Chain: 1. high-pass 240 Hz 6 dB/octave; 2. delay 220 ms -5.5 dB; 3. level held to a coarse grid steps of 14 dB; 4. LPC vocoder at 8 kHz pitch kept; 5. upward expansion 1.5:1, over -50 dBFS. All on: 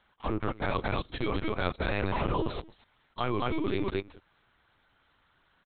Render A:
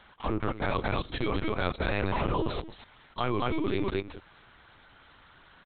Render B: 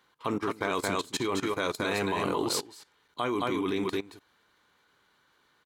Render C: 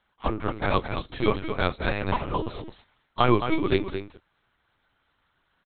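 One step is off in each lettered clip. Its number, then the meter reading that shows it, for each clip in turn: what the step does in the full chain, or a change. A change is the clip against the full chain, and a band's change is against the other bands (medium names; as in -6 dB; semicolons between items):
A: 5, momentary loudness spread change +4 LU; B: 4, 125 Hz band -8.0 dB; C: 3, momentary loudness spread change +8 LU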